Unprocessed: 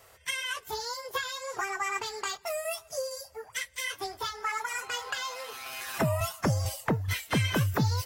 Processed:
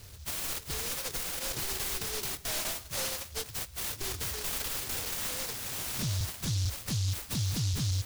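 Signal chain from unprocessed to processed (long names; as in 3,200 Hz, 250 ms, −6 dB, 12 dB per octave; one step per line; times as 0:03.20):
hearing-aid frequency compression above 3,500 Hz 1.5 to 1
downward compressor, threshold −31 dBFS, peak gain reduction 9 dB
on a send: delay with a high-pass on its return 330 ms, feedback 68%, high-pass 3,500 Hz, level −17.5 dB
on the sum: dynamic equaliser 800 Hz, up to +4 dB, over −48 dBFS, Q 1.9
hard clipping −35.5 dBFS, distortion −8 dB
bass and treble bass +15 dB, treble −1 dB
brickwall limiter −29.5 dBFS, peak gain reduction 9.5 dB
short delay modulated by noise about 4,800 Hz, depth 0.45 ms
level +3.5 dB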